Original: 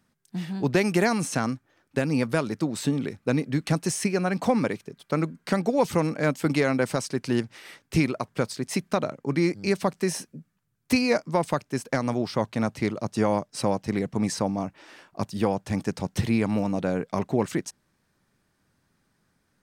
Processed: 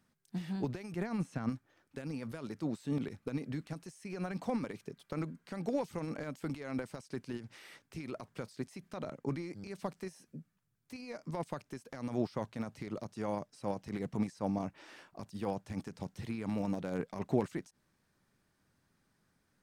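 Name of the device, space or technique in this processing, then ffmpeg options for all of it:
de-esser from a sidechain: -filter_complex "[0:a]asplit=3[a][b][c];[a]afade=t=out:st=0.95:d=0.02[d];[b]bass=f=250:g=7,treble=f=4k:g=-10,afade=t=in:st=0.95:d=0.02,afade=t=out:st=1.49:d=0.02[e];[c]afade=t=in:st=1.49:d=0.02[f];[d][e][f]amix=inputs=3:normalize=0,asplit=2[g][h];[h]highpass=4.8k,apad=whole_len=865464[i];[g][i]sidechaincompress=threshold=-51dB:ratio=8:attack=0.55:release=51,volume=-5dB"

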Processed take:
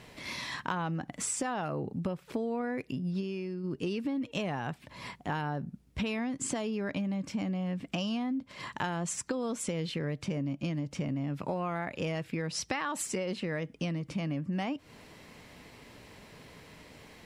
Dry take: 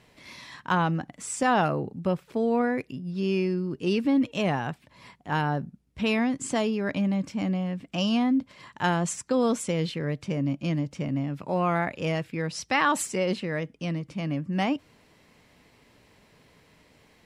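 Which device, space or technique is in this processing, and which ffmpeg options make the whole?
serial compression, leveller first: -filter_complex "[0:a]acompressor=threshold=-28dB:ratio=2,acompressor=threshold=-38dB:ratio=5,asplit=3[a][b][c];[a]afade=t=out:st=3.2:d=0.02[d];[b]agate=range=-33dB:threshold=-35dB:ratio=3:detection=peak,afade=t=in:st=3.2:d=0.02,afade=t=out:st=3.63:d=0.02[e];[c]afade=t=in:st=3.63:d=0.02[f];[d][e][f]amix=inputs=3:normalize=0,volume=6.5dB"

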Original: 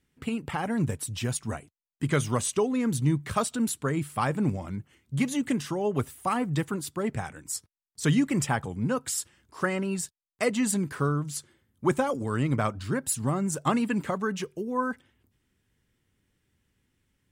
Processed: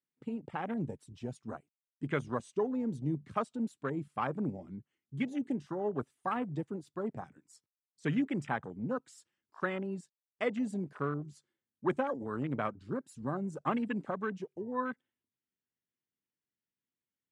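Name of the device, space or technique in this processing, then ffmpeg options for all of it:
over-cleaned archive recording: -af "highpass=180,lowpass=7k,afwtdn=0.02,volume=-6dB"

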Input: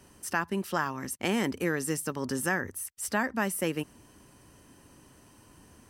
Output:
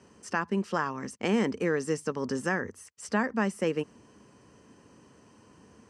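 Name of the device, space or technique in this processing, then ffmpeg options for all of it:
car door speaker: -af "highpass=83,equalizer=f=210:t=q:w=4:g=6,equalizer=f=460:t=q:w=4:g=8,equalizer=f=1.1k:t=q:w=4:g=3,equalizer=f=3.7k:t=q:w=4:g=-5,lowpass=f=7.3k:w=0.5412,lowpass=f=7.3k:w=1.3066,volume=-1.5dB"

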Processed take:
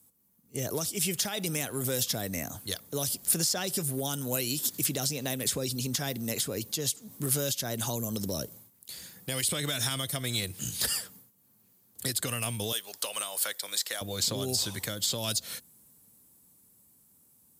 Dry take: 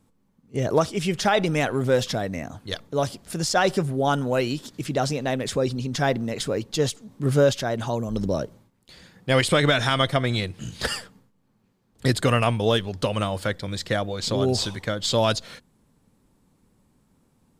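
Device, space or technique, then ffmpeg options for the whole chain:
FM broadcast chain: -filter_complex "[0:a]asettb=1/sr,asplit=3[a][b][c];[a]atrim=end=12.724[d];[b]atrim=start=12.72:end=14.01,asetpts=PTS-STARTPTS,afade=t=in:d=0.004:c=qsin,afade=t=out:st=1.286:d=0.004:c=qsin,highpass=690[e];[c]atrim=start=14.006[f];[d][e]acrossfade=d=0.004:c1=hsin:c2=qsin[g];[g][f]acrossfade=d=0.004:c1=qsin:c2=hsin,highpass=f=58:w=0.5412,highpass=f=58:w=1.3066,dynaudnorm=f=180:g=21:m=8dB,acrossover=split=350|2400|5500[h][i][j][k];[h]acompressor=threshold=-22dB:ratio=4[l];[i]acompressor=threshold=-27dB:ratio=4[m];[j]acompressor=threshold=-30dB:ratio=4[n];[k]acompressor=threshold=-39dB:ratio=4[o];[l][m][n][o]amix=inputs=4:normalize=0,aemphasis=mode=production:type=50fm,alimiter=limit=-14dB:level=0:latency=1:release=261,asoftclip=type=hard:threshold=-15dB,lowpass=f=15k:w=0.5412,lowpass=f=15k:w=1.3066,aemphasis=mode=production:type=50fm,volume=-8dB"

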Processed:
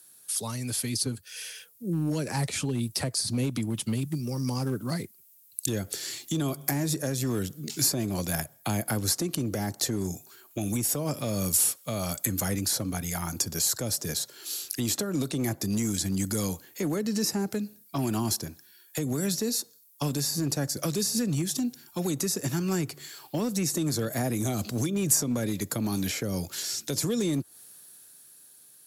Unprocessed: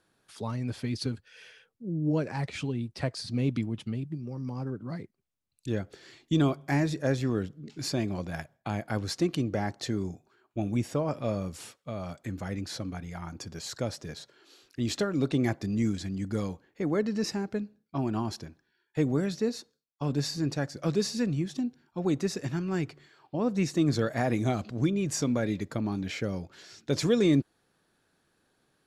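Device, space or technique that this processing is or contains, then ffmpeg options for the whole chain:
FM broadcast chain: -filter_complex "[0:a]highpass=f=72:w=0.5412,highpass=f=72:w=1.3066,dynaudnorm=f=300:g=11:m=7.5dB,acrossover=split=200|430|1400[a][b][c][d];[a]acompressor=threshold=-24dB:ratio=4[e];[b]acompressor=threshold=-25dB:ratio=4[f];[c]acompressor=threshold=-32dB:ratio=4[g];[d]acompressor=threshold=-46dB:ratio=4[h];[e][f][g][h]amix=inputs=4:normalize=0,aemphasis=mode=production:type=75fm,alimiter=limit=-19.5dB:level=0:latency=1:release=181,asoftclip=type=hard:threshold=-21dB,lowpass=f=15k:w=0.5412,lowpass=f=15k:w=1.3066,aemphasis=mode=production:type=75fm"

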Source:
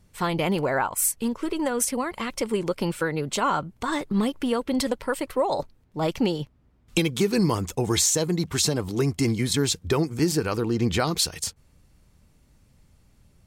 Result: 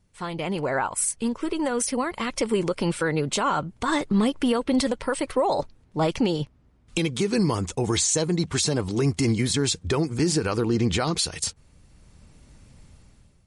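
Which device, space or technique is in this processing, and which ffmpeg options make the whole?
low-bitrate web radio: -af "dynaudnorm=f=170:g=7:m=15dB,alimiter=limit=-7dB:level=0:latency=1:release=59,volume=-6.5dB" -ar 44100 -c:a libmp3lame -b:a 48k

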